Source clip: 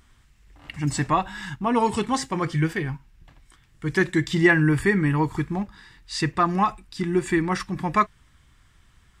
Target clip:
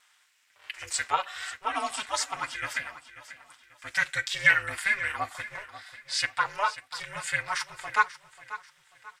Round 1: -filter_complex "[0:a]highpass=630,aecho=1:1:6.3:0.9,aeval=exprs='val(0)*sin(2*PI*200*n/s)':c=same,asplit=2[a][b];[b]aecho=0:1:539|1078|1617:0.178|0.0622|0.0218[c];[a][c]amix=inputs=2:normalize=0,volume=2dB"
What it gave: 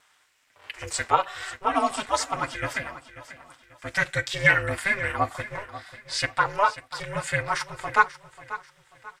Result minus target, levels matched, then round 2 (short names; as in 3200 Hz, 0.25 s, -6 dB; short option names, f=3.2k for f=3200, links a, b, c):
500 Hz band +8.0 dB
-filter_complex "[0:a]highpass=1.4k,aecho=1:1:6.3:0.9,aeval=exprs='val(0)*sin(2*PI*200*n/s)':c=same,asplit=2[a][b];[b]aecho=0:1:539|1078|1617:0.178|0.0622|0.0218[c];[a][c]amix=inputs=2:normalize=0,volume=2dB"